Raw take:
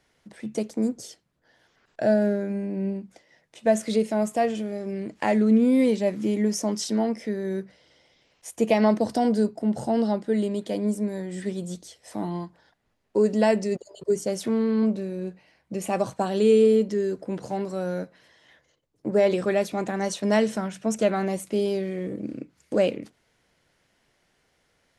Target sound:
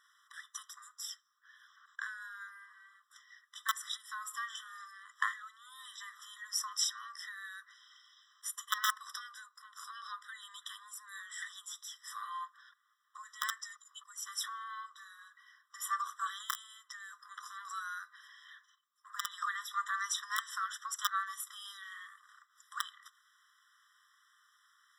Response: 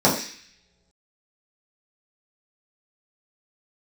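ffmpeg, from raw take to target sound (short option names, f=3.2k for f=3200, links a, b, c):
-filter_complex "[0:a]aeval=exprs='(mod(3.16*val(0)+1,2)-1)/3.16':c=same,acompressor=threshold=-25dB:ratio=10,equalizer=f=1.2k:t=o:w=0.2:g=10.5,asplit=2[a][b];[1:a]atrim=start_sample=2205,highshelf=f=4.5k:g=-10[c];[b][c]afir=irnorm=-1:irlink=0,volume=-43dB[d];[a][d]amix=inputs=2:normalize=0,afftfilt=real='re*eq(mod(floor(b*sr/1024/1000),2),1)':imag='im*eq(mod(floor(b*sr/1024/1000),2),1)':win_size=1024:overlap=0.75,volume=3dB"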